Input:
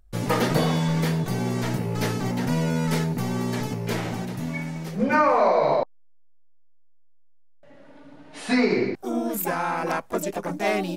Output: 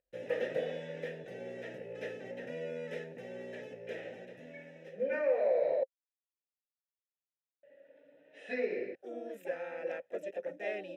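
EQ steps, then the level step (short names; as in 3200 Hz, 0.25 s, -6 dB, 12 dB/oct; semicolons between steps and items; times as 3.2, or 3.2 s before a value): vowel filter e; Butterworth band-stop 4500 Hz, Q 6.5; -2.0 dB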